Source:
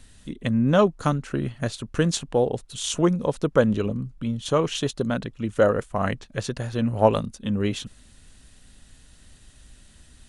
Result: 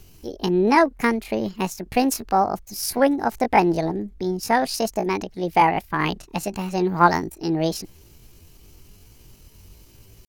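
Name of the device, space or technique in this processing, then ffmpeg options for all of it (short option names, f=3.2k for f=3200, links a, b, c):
chipmunk voice: -af "asetrate=70004,aresample=44100,atempo=0.629961,volume=2dB"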